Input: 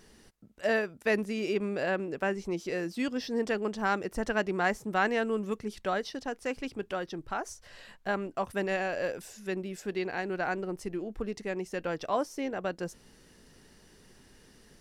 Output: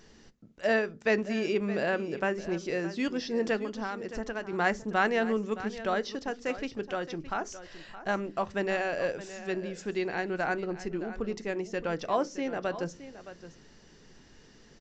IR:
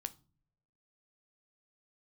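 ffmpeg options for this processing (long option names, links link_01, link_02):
-filter_complex "[0:a]asettb=1/sr,asplit=3[link_01][link_02][link_03];[link_01]atrim=end=3.614[link_04];[link_02]atrim=start=3.61:end=4.53,asetpts=PTS-STARTPTS,afade=type=in:duration=0.004:curve=qsin,afade=type=out:start_time=0.916:duration=0.004:curve=qsin,acompressor=threshold=-33dB:ratio=5[link_05];[link_03]atrim=start=4.526[link_06];[link_04][link_05]acrossfade=duration=0.004:curve1=hsin:curve2=qsin[link_07];[link_07][link_06]acrossfade=duration=0.004:curve1=qsin:curve2=hsin,aecho=1:1:618:0.2,asplit=2[link_08][link_09];[1:a]atrim=start_sample=2205,afade=type=out:start_time=0.4:duration=0.01,atrim=end_sample=18081,asetrate=70560,aresample=44100[link_10];[link_09][link_10]afir=irnorm=-1:irlink=0,volume=10.5dB[link_11];[link_08][link_11]amix=inputs=2:normalize=0,aresample=16000,aresample=44100,volume=-7dB"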